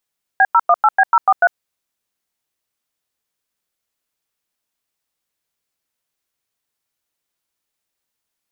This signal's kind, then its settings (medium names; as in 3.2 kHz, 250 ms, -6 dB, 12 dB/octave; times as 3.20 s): DTMF "B018B043", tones 50 ms, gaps 96 ms, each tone -10.5 dBFS